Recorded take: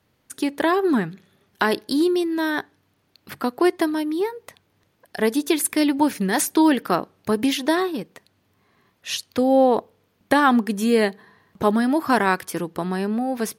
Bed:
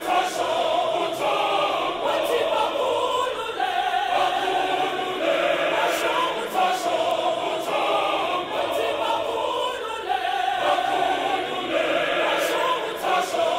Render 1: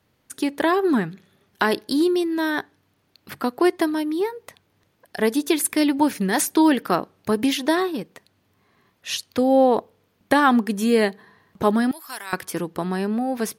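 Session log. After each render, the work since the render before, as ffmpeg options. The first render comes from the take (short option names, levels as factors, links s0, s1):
-filter_complex "[0:a]asettb=1/sr,asplit=3[s0][s1][s2];[s0]atrim=end=11.914[s3];[s1]atrim=start=11.91:end=12.33,asetpts=PTS-STARTPTS,afade=t=in:d=0.004:c=qsin,afade=t=out:st=0.416:d=0.004:c=qsin,aderivative[s4];[s2]atrim=start=12.326[s5];[s3][s4]acrossfade=d=0.004:c1=hsin:c2=qsin[s6];[s6][s5]acrossfade=d=0.004:c1=qsin:c2=hsin"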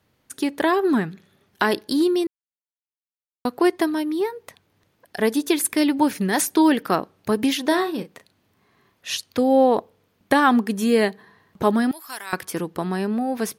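-filter_complex "[0:a]asettb=1/sr,asplit=3[s0][s1][s2];[s0]atrim=end=7.654[s3];[s1]atrim=start=7.65:end=9.16,asetpts=PTS-STARTPTS,afade=t=in:d=0.004:c=qsin,afade=t=out:st=1.506:d=0.004:c=qsin,asplit=2[s4][s5];[s5]adelay=36,volume=0.335[s6];[s4][s6]amix=inputs=2:normalize=0,atrim=end_sample=66591[s7];[s2]atrim=start=9.156[s8];[s3][s7]acrossfade=d=0.004:c1=hsin:c2=qsin[s9];[s9][s8]acrossfade=d=0.004:c1=qsin:c2=hsin,asplit=3[s10][s11][s12];[s10]atrim=end=2.27,asetpts=PTS-STARTPTS,afade=t=out:st=2.266:d=0.004:c=hsin[s13];[s11]atrim=start=2.27:end=3.45,asetpts=PTS-STARTPTS,volume=0[s14];[s12]atrim=start=3.45,asetpts=PTS-STARTPTS,afade=t=in:d=0.004:c=hsin[s15];[s13][s14][s15]concat=n=3:v=0:a=1"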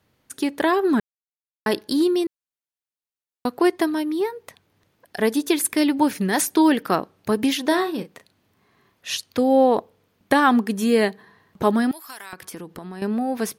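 -filter_complex "[0:a]asettb=1/sr,asplit=3[s0][s1][s2];[s0]atrim=end=12.094[s3];[s1]atrim=start=12.09:end=13.02,asetpts=PTS-STARTPTS,afade=t=in:d=0.004:c=qsin,afade=t=out:st=0.926:d=0.004:c=qsin,acompressor=threshold=0.0251:ratio=8:attack=3.2:release=140:knee=1:detection=peak[s4];[s2]atrim=start=13.016[s5];[s3][s4]acrossfade=d=0.004:c1=hsin:c2=qsin[s6];[s6][s5]acrossfade=d=0.004:c1=qsin:c2=hsin,asplit=3[s7][s8][s9];[s7]atrim=end=1,asetpts=PTS-STARTPTS,afade=t=out:st=0.996:d=0.004:c=hsin[s10];[s8]atrim=start=1:end=1.66,asetpts=PTS-STARTPTS,volume=0[s11];[s9]atrim=start=1.66,asetpts=PTS-STARTPTS,afade=t=in:d=0.004:c=hsin[s12];[s10][s11][s12]concat=n=3:v=0:a=1"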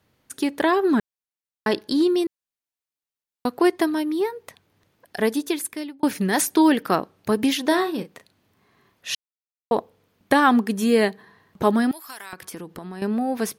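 -filter_complex "[0:a]asettb=1/sr,asplit=3[s0][s1][s2];[s0]atrim=end=0.624[s3];[s1]atrim=start=0.62:end=2.18,asetpts=PTS-STARTPTS,afade=t=in:d=0.004:c=qsin,afade=t=out:st=1.556:d=0.004:c=qsin,acrossover=split=7800[s4][s5];[s5]acompressor=threshold=0.00251:ratio=4:attack=1:release=60[s6];[s4][s6]amix=inputs=2:normalize=0[s7];[s2]atrim=start=2.176[s8];[s3][s7]acrossfade=d=0.004:c1=hsin:c2=qsin[s9];[s9][s8]acrossfade=d=0.004:c1=qsin:c2=hsin,asplit=4[s10][s11][s12][s13];[s10]atrim=end=6.03,asetpts=PTS-STARTPTS,afade=t=out:st=5.16:d=0.87[s14];[s11]atrim=start=6.03:end=9.15,asetpts=PTS-STARTPTS,afade=t=in:d=0.004:c=hsin,afade=t=out:st=3.116:d=0.004:c=hsin[s15];[s12]atrim=start=9.15:end=9.71,asetpts=PTS-STARTPTS,volume=0[s16];[s13]atrim=start=9.71,asetpts=PTS-STARTPTS,afade=t=in:d=0.004:c=hsin[s17];[s14][s15][s16][s17]concat=n=4:v=0:a=1"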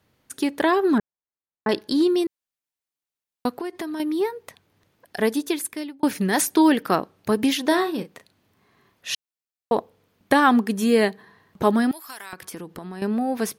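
-filter_complex "[0:a]asettb=1/sr,asplit=3[s0][s1][s2];[s0]atrim=end=0.984[s3];[s1]atrim=start=0.98:end=1.69,asetpts=PTS-STARTPTS,afade=t=in:d=0.004:c=qsin,afade=t=out:st=0.706:d=0.004:c=qsin,lowpass=1400[s4];[s2]atrim=start=1.686[s5];[s3][s4]acrossfade=d=0.004:c1=hsin:c2=qsin[s6];[s6][s5]acrossfade=d=0.004:c1=qsin:c2=hsin,asettb=1/sr,asplit=3[s7][s8][s9];[s7]atrim=end=3.524[s10];[s8]atrim=start=3.52:end=4,asetpts=PTS-STARTPTS,afade=t=in:d=0.004:c=qsin,afade=t=out:st=0.476:d=0.004:c=qsin,acompressor=threshold=0.0447:ratio=8:attack=3.2:release=140:knee=1:detection=peak[s11];[s9]atrim=start=3.996[s12];[s10][s11]acrossfade=d=0.004:c1=hsin:c2=qsin[s13];[s13][s12]acrossfade=d=0.004:c1=qsin:c2=hsin"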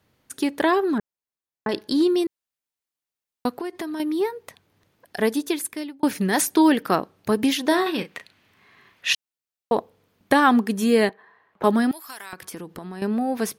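-filter_complex "[0:a]asettb=1/sr,asplit=3[s0][s1][s2];[s0]atrim=end=0.824[s3];[s1]atrim=start=0.82:end=1.74,asetpts=PTS-STARTPTS,afade=t=in:d=0.004:c=qsin,afade=t=out:st=0.916:d=0.004:c=qsin,acompressor=threshold=0.1:ratio=4:attack=3.2:release=140:knee=1:detection=peak[s4];[s2]atrim=start=1.736[s5];[s3][s4]acrossfade=d=0.004:c1=hsin:c2=qsin[s6];[s6][s5]acrossfade=d=0.004:c1=qsin:c2=hsin,asettb=1/sr,asplit=3[s7][s8][s9];[s7]atrim=end=7.864[s10];[s8]atrim=start=7.86:end=9.13,asetpts=PTS-STARTPTS,afade=t=in:d=0.004:c=qsin,afade=t=out:st=1.266:d=0.004:c=qsin,equalizer=f=2300:t=o:w=2:g=12[s11];[s9]atrim=start=9.126[s12];[s10][s11]acrossfade=d=0.004:c1=hsin:c2=qsin[s13];[s13][s12]acrossfade=d=0.004:c1=qsin:c2=hsin,asettb=1/sr,asplit=3[s14][s15][s16];[s14]atrim=end=11.094[s17];[s15]atrim=start=11.09:end=11.64,asetpts=PTS-STARTPTS,afade=t=in:d=0.004:c=qsin,afade=t=out:st=0.546:d=0.004:c=qsin,acrossover=split=440 2700:gain=0.126 1 0.126[s18][s19][s20];[s18][s19][s20]amix=inputs=3:normalize=0[s21];[s16]atrim=start=11.636[s22];[s17][s21]acrossfade=d=0.004:c1=hsin:c2=qsin[s23];[s23][s22]acrossfade=d=0.004:c1=qsin:c2=hsin"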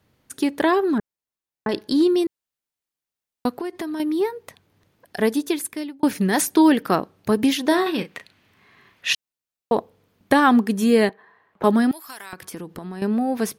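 -af "lowshelf=f=350:g=3.5"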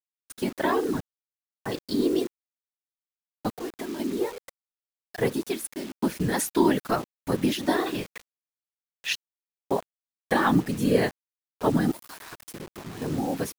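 -af "afftfilt=real='hypot(re,im)*cos(2*PI*random(0))':imag='hypot(re,im)*sin(2*PI*random(1))':win_size=512:overlap=0.75,acrusher=bits=6:mix=0:aa=0.000001"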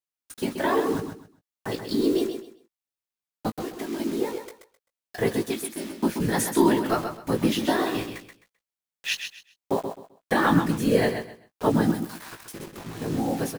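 -filter_complex "[0:a]asplit=2[s0][s1];[s1]adelay=18,volume=0.447[s2];[s0][s2]amix=inputs=2:normalize=0,asplit=2[s3][s4];[s4]aecho=0:1:130|260|390:0.422|0.101|0.0243[s5];[s3][s5]amix=inputs=2:normalize=0"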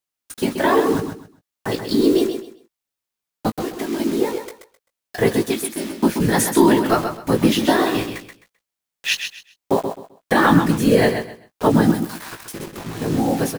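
-af "volume=2.24,alimiter=limit=0.708:level=0:latency=1"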